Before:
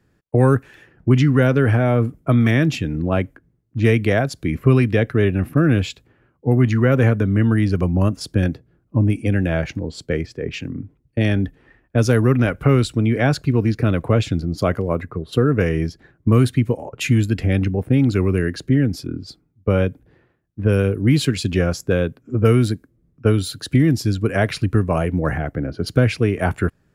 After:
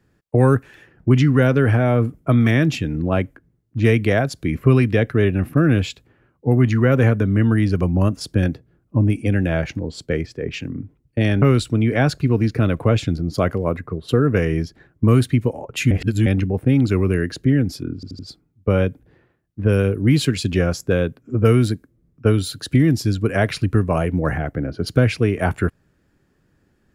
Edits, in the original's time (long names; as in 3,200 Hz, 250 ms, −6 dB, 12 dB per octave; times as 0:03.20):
0:11.42–0:12.66: remove
0:17.15–0:17.50: reverse
0:19.19: stutter 0.08 s, 4 plays